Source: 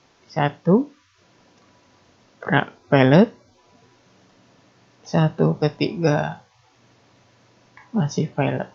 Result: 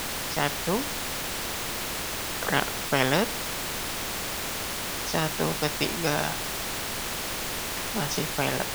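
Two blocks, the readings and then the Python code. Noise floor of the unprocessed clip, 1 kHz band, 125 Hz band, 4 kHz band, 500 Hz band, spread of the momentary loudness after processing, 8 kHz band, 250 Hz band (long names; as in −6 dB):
−59 dBFS, −2.5 dB, −11.5 dB, +7.5 dB, −8.0 dB, 5 LU, can't be measured, −11.0 dB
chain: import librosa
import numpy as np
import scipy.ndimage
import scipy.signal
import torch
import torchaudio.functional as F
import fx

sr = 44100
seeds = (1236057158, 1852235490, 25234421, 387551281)

y = fx.dmg_noise_colour(x, sr, seeds[0], colour='pink', level_db=-38.0)
y = fx.bass_treble(y, sr, bass_db=-3, treble_db=-2)
y = fx.spectral_comp(y, sr, ratio=2.0)
y = y * 10.0 ** (-4.5 / 20.0)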